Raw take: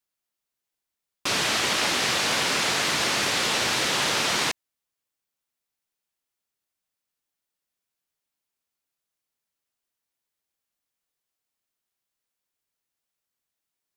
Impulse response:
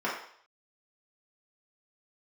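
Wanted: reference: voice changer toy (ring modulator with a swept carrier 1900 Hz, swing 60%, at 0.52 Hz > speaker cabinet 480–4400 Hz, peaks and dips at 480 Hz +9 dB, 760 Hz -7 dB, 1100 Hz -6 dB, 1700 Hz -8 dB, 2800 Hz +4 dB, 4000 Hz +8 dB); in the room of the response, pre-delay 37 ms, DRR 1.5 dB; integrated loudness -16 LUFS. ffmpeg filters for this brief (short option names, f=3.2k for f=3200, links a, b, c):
-filter_complex "[0:a]asplit=2[a][b];[1:a]atrim=start_sample=2205,adelay=37[c];[b][c]afir=irnorm=-1:irlink=0,volume=-12dB[d];[a][d]amix=inputs=2:normalize=0,aeval=exprs='val(0)*sin(2*PI*1900*n/s+1900*0.6/0.52*sin(2*PI*0.52*n/s))':c=same,highpass=480,equalizer=f=480:t=q:w=4:g=9,equalizer=f=760:t=q:w=4:g=-7,equalizer=f=1.1k:t=q:w=4:g=-6,equalizer=f=1.7k:t=q:w=4:g=-8,equalizer=f=2.8k:t=q:w=4:g=4,equalizer=f=4k:t=q:w=4:g=8,lowpass=f=4.4k:w=0.5412,lowpass=f=4.4k:w=1.3066,volume=7.5dB"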